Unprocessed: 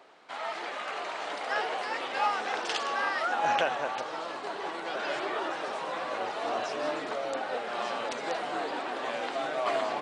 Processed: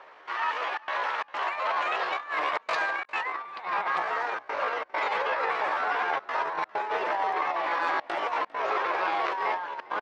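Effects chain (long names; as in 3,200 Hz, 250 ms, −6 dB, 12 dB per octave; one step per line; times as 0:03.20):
low-pass filter 1,500 Hz 12 dB per octave
parametric band 160 Hz −13 dB 0.31 octaves
compressor whose output falls as the input rises −34 dBFS, ratio −0.5
gate pattern "xxxxxxx.xxx.xxxx" 133 BPM −60 dB
pitch shifter +6 semitones
echo with shifted repeats 401 ms, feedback 34%, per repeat −52 Hz, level −21.5 dB
level +6.5 dB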